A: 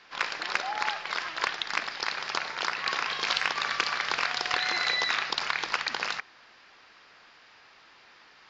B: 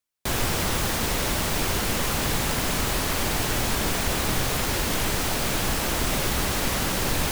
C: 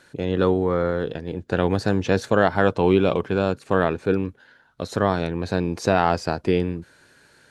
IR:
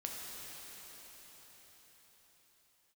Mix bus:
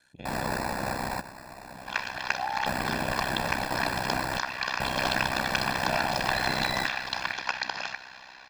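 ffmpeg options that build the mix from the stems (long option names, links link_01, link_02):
-filter_complex "[0:a]adelay=1750,volume=-3.5dB,asplit=2[link_01][link_02];[link_02]volume=-9.5dB[link_03];[1:a]highpass=390,alimiter=limit=-21dB:level=0:latency=1,acrusher=samples=14:mix=1:aa=0.000001,volume=-2dB,asplit=2[link_04][link_05];[link_05]volume=-22dB[link_06];[2:a]acrossover=split=3600[link_07][link_08];[link_08]acompressor=threshold=-48dB:ratio=4:attack=1:release=60[link_09];[link_07][link_09]amix=inputs=2:normalize=0,tiltshelf=frequency=1200:gain=-5.5,volume=-13dB,asplit=3[link_10][link_11][link_12];[link_10]atrim=end=1.13,asetpts=PTS-STARTPTS,afade=type=out:start_time=1.126:duration=0.004:curve=hsin[link_13];[link_11]atrim=start=1.13:end=2.66,asetpts=PTS-STARTPTS,volume=0[link_14];[link_12]atrim=start=2.66,asetpts=PTS-STARTPTS,afade=type=in:duration=0.004:curve=hsin[link_15];[link_13][link_14][link_15]concat=n=3:v=0:a=1,asplit=2[link_16][link_17];[link_17]apad=whole_len=322801[link_18];[link_04][link_18]sidechaingate=range=-15dB:threshold=-55dB:ratio=16:detection=peak[link_19];[3:a]atrim=start_sample=2205[link_20];[link_03][link_06]amix=inputs=2:normalize=0[link_21];[link_21][link_20]afir=irnorm=-1:irlink=0[link_22];[link_01][link_19][link_16][link_22]amix=inputs=4:normalize=0,equalizer=frequency=320:width=0.44:gain=5,aecho=1:1:1.2:0.7,aeval=exprs='val(0)*sin(2*PI*32*n/s)':channel_layout=same"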